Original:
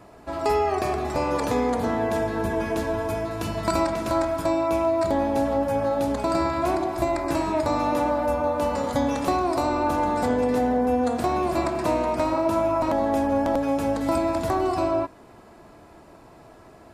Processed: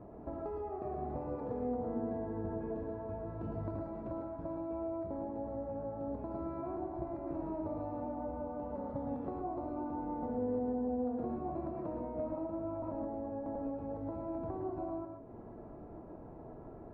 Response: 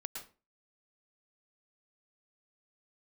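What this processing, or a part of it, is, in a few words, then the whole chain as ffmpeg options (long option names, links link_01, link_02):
television next door: -filter_complex "[0:a]acompressor=threshold=-37dB:ratio=5,lowpass=600[link_01];[1:a]atrim=start_sample=2205[link_02];[link_01][link_02]afir=irnorm=-1:irlink=0,volume=3.5dB"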